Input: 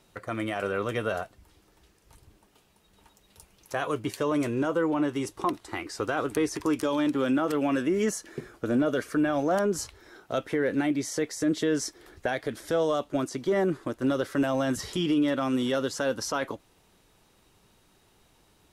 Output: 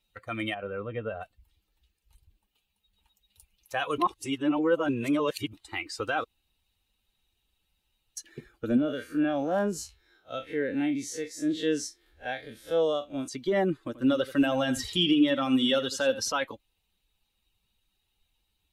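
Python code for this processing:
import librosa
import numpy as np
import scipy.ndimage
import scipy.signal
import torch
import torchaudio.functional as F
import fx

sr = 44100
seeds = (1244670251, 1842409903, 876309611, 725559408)

y = fx.spacing_loss(x, sr, db_at_10k=41, at=(0.54, 1.21))
y = fx.spec_blur(y, sr, span_ms=89.0, at=(8.77, 13.28))
y = fx.echo_single(y, sr, ms=84, db=-10.5, at=(13.8, 16.3))
y = fx.edit(y, sr, fx.reverse_span(start_s=3.98, length_s=1.55),
    fx.room_tone_fill(start_s=6.24, length_s=1.93), tone=tone)
y = fx.bin_expand(y, sr, power=1.5)
y = fx.peak_eq(y, sr, hz=3100.0, db=9.5, octaves=0.76)
y = y + 0.3 * np.pad(y, (int(3.8 * sr / 1000.0), 0))[:len(y)]
y = y * 10.0 ** (2.0 / 20.0)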